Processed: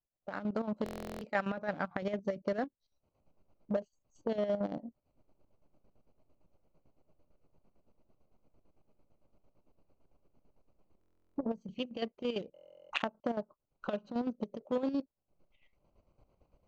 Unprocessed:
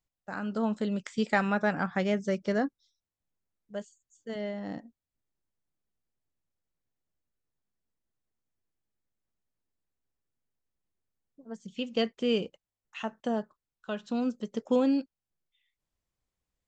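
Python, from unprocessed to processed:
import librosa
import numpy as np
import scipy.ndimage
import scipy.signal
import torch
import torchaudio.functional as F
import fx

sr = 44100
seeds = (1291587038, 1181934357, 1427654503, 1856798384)

p1 = fx.wiener(x, sr, points=25)
p2 = fx.recorder_agc(p1, sr, target_db=-19.0, rise_db_per_s=62.0, max_gain_db=30)
p3 = fx.peak_eq(p2, sr, hz=590.0, db=7.0, octaves=0.23)
p4 = fx.chopper(p3, sr, hz=8.9, depth_pct=60, duty_pct=50)
p5 = fx.low_shelf(p4, sr, hz=220.0, db=-5.5)
p6 = fx.level_steps(p5, sr, step_db=15)
p7 = p5 + (p6 * librosa.db_to_amplitude(-1.0))
p8 = scipy.signal.sosfilt(scipy.signal.butter(4, 6600.0, 'lowpass', fs=sr, output='sos'), p7)
p9 = fx.buffer_glitch(p8, sr, at_s=(0.84, 10.99, 12.54), block=1024, repeats=15)
p10 = fx.transformer_sat(p9, sr, knee_hz=1000.0)
y = p10 * librosa.db_to_amplitude(-8.5)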